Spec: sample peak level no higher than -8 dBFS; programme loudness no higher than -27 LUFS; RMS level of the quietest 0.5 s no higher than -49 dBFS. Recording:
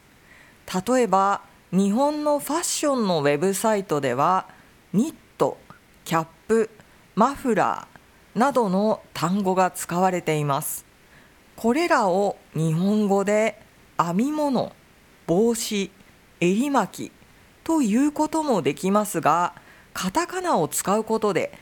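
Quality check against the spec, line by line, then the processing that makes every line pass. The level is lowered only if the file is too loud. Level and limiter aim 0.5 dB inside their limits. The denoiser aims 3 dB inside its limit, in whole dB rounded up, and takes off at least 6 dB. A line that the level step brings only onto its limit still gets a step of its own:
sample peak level -4.5 dBFS: fail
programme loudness -23.0 LUFS: fail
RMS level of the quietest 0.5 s -54 dBFS: pass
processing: trim -4.5 dB

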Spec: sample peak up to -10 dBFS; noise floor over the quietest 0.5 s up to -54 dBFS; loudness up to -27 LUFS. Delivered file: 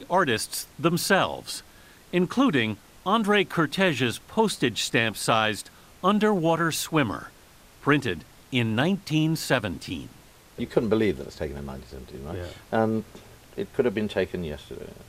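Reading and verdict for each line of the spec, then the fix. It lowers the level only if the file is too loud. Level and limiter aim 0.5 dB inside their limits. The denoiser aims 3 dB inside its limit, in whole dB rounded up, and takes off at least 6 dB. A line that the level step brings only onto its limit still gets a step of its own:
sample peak -6.0 dBFS: fail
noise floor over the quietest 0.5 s -52 dBFS: fail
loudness -25.0 LUFS: fail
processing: trim -2.5 dB; peak limiter -10.5 dBFS

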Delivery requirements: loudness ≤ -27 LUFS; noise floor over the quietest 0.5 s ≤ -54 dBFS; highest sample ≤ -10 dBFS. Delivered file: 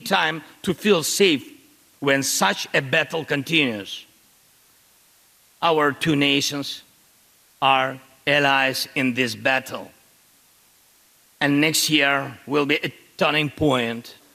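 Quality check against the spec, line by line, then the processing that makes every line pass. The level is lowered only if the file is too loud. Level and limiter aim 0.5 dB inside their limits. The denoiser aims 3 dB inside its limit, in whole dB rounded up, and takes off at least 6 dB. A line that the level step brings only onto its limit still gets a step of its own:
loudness -20.5 LUFS: fail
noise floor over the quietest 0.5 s -57 dBFS: pass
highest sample -5.5 dBFS: fail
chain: trim -7 dB

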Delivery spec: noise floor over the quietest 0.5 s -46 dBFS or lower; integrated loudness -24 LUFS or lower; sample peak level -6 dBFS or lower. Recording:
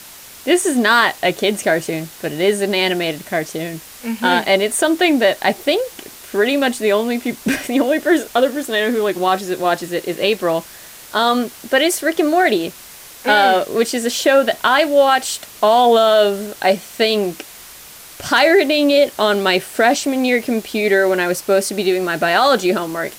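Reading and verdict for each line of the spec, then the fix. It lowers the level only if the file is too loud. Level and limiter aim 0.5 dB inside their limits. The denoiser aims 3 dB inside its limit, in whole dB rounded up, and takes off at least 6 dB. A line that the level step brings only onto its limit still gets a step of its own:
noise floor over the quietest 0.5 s -39 dBFS: fail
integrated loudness -16.5 LUFS: fail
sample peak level -3.5 dBFS: fail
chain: trim -8 dB

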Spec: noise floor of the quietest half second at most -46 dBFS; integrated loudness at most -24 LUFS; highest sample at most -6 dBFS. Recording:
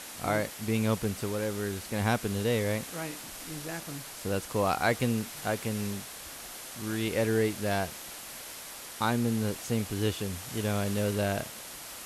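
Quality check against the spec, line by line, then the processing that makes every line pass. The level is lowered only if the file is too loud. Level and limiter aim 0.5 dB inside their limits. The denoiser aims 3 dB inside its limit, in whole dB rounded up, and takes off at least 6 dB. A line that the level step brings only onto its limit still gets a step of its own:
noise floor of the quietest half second -43 dBFS: fail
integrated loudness -31.5 LUFS: pass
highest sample -13.5 dBFS: pass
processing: noise reduction 6 dB, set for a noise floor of -43 dBFS

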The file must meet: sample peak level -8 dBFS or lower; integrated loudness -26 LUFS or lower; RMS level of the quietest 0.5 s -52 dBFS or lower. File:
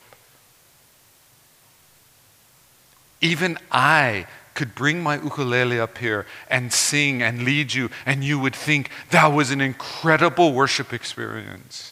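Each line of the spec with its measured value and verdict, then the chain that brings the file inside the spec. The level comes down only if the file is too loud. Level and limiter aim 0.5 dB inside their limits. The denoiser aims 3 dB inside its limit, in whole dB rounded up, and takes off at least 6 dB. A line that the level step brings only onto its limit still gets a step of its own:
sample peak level -1.5 dBFS: fail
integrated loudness -20.5 LUFS: fail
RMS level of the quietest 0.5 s -55 dBFS: pass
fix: trim -6 dB; peak limiter -8.5 dBFS

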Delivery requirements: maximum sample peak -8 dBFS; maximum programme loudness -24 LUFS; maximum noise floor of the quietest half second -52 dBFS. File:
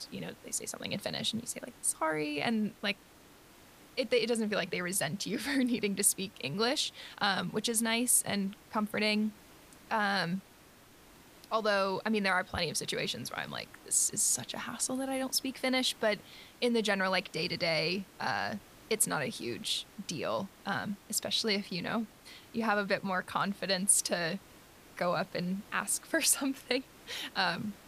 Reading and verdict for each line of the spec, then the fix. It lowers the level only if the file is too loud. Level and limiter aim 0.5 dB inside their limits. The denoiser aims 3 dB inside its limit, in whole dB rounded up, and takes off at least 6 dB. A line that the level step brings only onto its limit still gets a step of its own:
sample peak -12.5 dBFS: pass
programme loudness -32.0 LUFS: pass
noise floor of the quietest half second -58 dBFS: pass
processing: none needed

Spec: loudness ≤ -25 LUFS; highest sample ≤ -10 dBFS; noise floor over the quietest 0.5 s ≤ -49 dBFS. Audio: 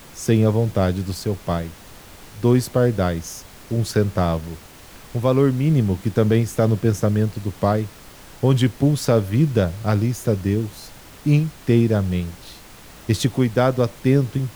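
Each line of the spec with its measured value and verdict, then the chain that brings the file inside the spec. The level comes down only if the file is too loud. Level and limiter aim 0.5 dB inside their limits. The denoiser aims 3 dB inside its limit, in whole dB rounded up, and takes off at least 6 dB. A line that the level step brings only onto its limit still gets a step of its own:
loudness -20.5 LUFS: fail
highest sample -5.0 dBFS: fail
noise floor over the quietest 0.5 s -43 dBFS: fail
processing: noise reduction 6 dB, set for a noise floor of -43 dBFS; trim -5 dB; peak limiter -10.5 dBFS

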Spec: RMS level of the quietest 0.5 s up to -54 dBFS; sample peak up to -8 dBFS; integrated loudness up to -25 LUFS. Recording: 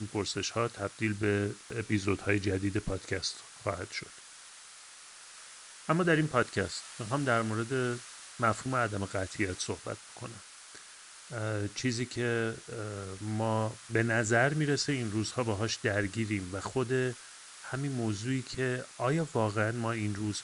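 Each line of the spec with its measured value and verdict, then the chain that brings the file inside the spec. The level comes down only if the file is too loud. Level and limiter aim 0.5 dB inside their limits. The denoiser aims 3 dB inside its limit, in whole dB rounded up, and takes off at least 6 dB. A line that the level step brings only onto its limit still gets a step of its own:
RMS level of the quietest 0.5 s -51 dBFS: fail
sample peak -12.5 dBFS: pass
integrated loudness -32.0 LUFS: pass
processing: noise reduction 6 dB, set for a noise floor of -51 dBFS

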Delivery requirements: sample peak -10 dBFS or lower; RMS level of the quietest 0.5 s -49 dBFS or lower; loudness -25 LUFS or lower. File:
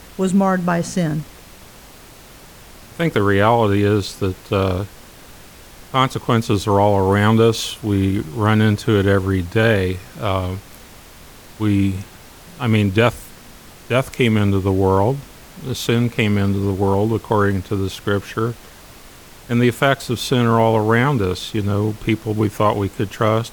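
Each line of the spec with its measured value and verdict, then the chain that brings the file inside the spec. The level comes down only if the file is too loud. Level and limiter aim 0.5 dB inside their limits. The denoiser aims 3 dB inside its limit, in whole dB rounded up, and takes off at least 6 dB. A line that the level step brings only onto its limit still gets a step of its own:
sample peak -2.5 dBFS: fail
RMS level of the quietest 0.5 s -42 dBFS: fail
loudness -18.5 LUFS: fail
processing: noise reduction 6 dB, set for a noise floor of -42 dBFS; trim -7 dB; peak limiter -10.5 dBFS

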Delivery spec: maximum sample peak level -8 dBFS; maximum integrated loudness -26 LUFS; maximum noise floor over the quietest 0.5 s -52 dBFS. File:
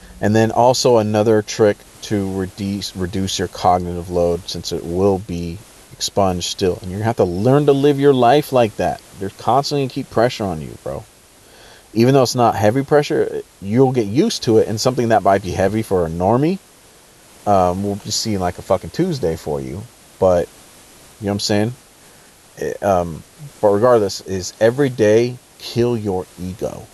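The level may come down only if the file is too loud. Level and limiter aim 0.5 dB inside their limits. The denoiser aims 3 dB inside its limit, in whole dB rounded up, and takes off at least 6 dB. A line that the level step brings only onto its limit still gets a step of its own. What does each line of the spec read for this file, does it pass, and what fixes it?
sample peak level -1.5 dBFS: fail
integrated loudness -17.5 LUFS: fail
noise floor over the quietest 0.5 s -47 dBFS: fail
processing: trim -9 dB

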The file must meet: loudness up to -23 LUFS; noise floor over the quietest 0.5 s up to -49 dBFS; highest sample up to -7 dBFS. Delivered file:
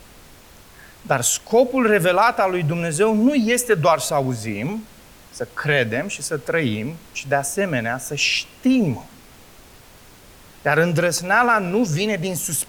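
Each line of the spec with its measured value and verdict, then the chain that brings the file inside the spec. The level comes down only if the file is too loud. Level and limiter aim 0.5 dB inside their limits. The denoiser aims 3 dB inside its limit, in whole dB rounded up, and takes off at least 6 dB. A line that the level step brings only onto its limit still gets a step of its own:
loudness -19.5 LUFS: fail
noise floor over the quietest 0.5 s -46 dBFS: fail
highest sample -4.5 dBFS: fail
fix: trim -4 dB

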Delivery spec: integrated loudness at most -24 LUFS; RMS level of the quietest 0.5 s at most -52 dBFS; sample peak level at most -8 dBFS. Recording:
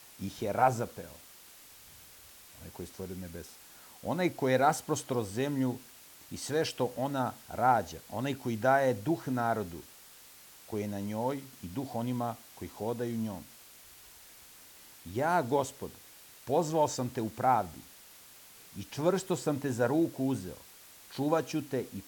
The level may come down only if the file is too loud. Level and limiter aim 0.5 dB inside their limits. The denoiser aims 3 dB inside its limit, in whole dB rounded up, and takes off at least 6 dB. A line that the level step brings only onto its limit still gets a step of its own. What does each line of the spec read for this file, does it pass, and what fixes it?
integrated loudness -32.0 LUFS: pass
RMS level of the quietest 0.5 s -54 dBFS: pass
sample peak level -12.0 dBFS: pass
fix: none needed

